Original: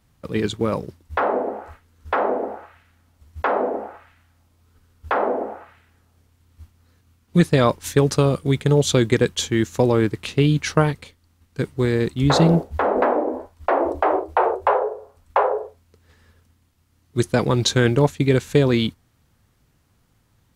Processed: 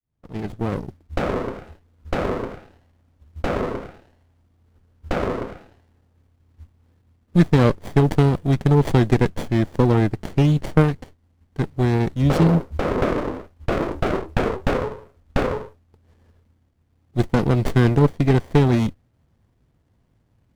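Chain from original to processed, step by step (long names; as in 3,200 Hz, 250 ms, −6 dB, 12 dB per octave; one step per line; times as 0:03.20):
fade in at the beginning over 0.90 s
windowed peak hold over 33 samples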